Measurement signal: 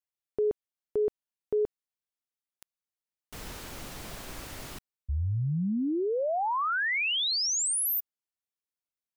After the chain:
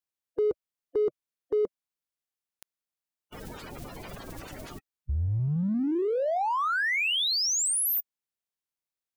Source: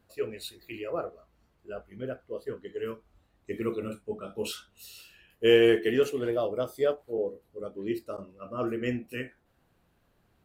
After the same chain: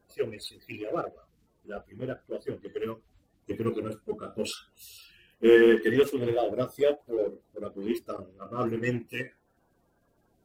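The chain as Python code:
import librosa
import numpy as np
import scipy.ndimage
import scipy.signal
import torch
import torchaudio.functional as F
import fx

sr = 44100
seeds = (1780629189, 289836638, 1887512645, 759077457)

p1 = fx.spec_quant(x, sr, step_db=30)
p2 = np.sign(p1) * np.maximum(np.abs(p1) - 10.0 ** (-38.5 / 20.0), 0.0)
y = p1 + (p2 * 10.0 ** (-8.0 / 20.0))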